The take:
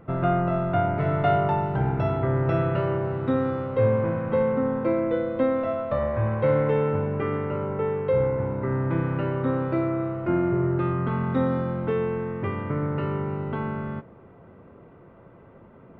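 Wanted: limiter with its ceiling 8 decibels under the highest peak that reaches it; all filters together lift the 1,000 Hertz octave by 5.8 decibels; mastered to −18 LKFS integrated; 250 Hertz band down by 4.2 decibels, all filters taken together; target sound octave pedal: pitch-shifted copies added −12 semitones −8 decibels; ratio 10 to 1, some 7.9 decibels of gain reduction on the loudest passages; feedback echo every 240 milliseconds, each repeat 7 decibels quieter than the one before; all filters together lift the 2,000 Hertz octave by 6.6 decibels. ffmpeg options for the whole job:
ffmpeg -i in.wav -filter_complex "[0:a]equalizer=frequency=250:width_type=o:gain=-7,equalizer=frequency=1000:width_type=o:gain=7,equalizer=frequency=2000:width_type=o:gain=6,acompressor=threshold=-23dB:ratio=10,alimiter=limit=-22.5dB:level=0:latency=1,aecho=1:1:240|480|720|960|1200:0.447|0.201|0.0905|0.0407|0.0183,asplit=2[link_01][link_02];[link_02]asetrate=22050,aresample=44100,atempo=2,volume=-8dB[link_03];[link_01][link_03]amix=inputs=2:normalize=0,volume=11.5dB" out.wav

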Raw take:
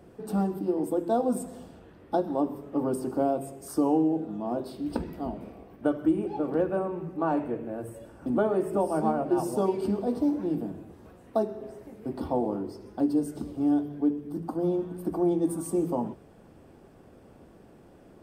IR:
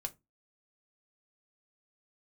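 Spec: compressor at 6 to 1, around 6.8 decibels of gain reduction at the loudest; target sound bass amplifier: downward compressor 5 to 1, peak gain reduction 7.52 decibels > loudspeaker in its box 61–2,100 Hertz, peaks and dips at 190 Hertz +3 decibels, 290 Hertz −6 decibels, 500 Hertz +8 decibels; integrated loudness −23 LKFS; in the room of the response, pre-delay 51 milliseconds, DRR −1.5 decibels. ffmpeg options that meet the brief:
-filter_complex "[0:a]acompressor=threshold=-27dB:ratio=6,asplit=2[link_01][link_02];[1:a]atrim=start_sample=2205,adelay=51[link_03];[link_02][link_03]afir=irnorm=-1:irlink=0,volume=2.5dB[link_04];[link_01][link_04]amix=inputs=2:normalize=0,acompressor=threshold=-28dB:ratio=5,highpass=frequency=61:width=0.5412,highpass=frequency=61:width=1.3066,equalizer=frequency=190:width_type=q:width=4:gain=3,equalizer=frequency=290:width_type=q:width=4:gain=-6,equalizer=frequency=500:width_type=q:width=4:gain=8,lowpass=frequency=2100:width=0.5412,lowpass=frequency=2100:width=1.3066,volume=9dB"

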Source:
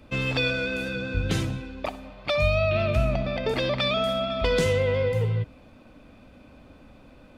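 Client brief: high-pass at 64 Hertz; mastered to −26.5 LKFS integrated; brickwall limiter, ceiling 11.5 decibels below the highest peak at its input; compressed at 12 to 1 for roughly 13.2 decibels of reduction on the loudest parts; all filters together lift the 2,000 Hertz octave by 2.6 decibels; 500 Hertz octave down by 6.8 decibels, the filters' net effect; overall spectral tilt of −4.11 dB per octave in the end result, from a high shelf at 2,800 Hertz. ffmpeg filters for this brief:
ffmpeg -i in.wav -af "highpass=64,equalizer=frequency=500:width_type=o:gain=-8.5,equalizer=frequency=2000:width_type=o:gain=8,highshelf=frequency=2800:gain=-8,acompressor=threshold=-34dB:ratio=12,volume=13dB,alimiter=limit=-18dB:level=0:latency=1" out.wav

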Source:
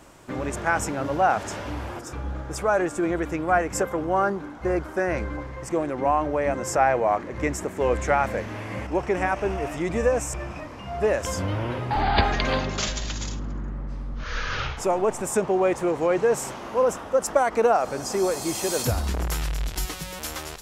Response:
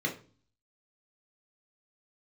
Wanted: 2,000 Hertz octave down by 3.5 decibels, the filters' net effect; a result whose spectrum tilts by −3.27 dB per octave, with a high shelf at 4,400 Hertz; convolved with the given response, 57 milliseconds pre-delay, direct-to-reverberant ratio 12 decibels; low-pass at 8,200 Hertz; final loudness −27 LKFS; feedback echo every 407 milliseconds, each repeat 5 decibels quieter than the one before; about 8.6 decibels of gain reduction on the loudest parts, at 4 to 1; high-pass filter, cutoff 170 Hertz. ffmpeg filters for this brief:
-filter_complex "[0:a]highpass=170,lowpass=8200,equalizer=frequency=2000:width_type=o:gain=-6.5,highshelf=frequency=4400:gain=8.5,acompressor=threshold=-26dB:ratio=4,aecho=1:1:407|814|1221|1628|2035|2442|2849:0.562|0.315|0.176|0.0988|0.0553|0.031|0.0173,asplit=2[link_01][link_02];[1:a]atrim=start_sample=2205,adelay=57[link_03];[link_02][link_03]afir=irnorm=-1:irlink=0,volume=-18.5dB[link_04];[link_01][link_04]amix=inputs=2:normalize=0,volume=1.5dB"

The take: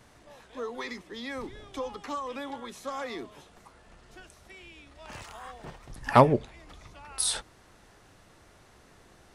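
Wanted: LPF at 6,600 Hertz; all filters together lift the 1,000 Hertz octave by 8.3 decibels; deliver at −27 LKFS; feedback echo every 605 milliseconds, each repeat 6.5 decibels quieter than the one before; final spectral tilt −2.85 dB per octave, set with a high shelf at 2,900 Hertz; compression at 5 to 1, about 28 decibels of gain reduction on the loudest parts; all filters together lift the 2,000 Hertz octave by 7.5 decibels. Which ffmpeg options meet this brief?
ffmpeg -i in.wav -af "lowpass=6600,equalizer=frequency=1000:width_type=o:gain=8,equalizer=frequency=2000:width_type=o:gain=5,highshelf=frequency=2900:gain=4.5,acompressor=threshold=-39dB:ratio=5,aecho=1:1:605|1210|1815|2420|3025|3630:0.473|0.222|0.105|0.0491|0.0231|0.0109,volume=15.5dB" out.wav

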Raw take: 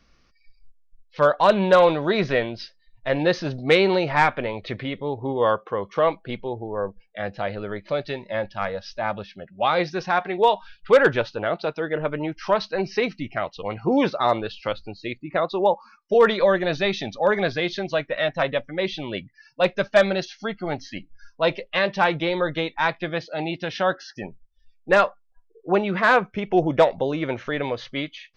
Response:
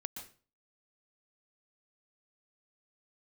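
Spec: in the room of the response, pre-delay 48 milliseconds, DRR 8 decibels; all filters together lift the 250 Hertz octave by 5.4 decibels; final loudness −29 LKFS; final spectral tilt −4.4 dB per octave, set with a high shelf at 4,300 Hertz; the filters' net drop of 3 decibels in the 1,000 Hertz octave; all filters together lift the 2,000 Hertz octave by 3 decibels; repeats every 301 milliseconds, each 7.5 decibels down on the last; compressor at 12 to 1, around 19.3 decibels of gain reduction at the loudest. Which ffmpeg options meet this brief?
-filter_complex "[0:a]equalizer=frequency=250:width_type=o:gain=8,equalizer=frequency=1000:width_type=o:gain=-6,equalizer=frequency=2000:width_type=o:gain=7,highshelf=frequency=4300:gain=-6,acompressor=threshold=-30dB:ratio=12,aecho=1:1:301|602|903|1204|1505:0.422|0.177|0.0744|0.0312|0.0131,asplit=2[link_01][link_02];[1:a]atrim=start_sample=2205,adelay=48[link_03];[link_02][link_03]afir=irnorm=-1:irlink=0,volume=-6dB[link_04];[link_01][link_04]amix=inputs=2:normalize=0,volume=4.5dB"

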